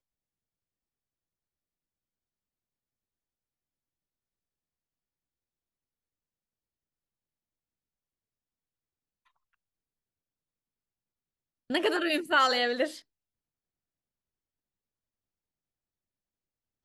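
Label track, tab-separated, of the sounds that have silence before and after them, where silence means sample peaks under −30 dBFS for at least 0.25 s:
11.700000	12.870000	sound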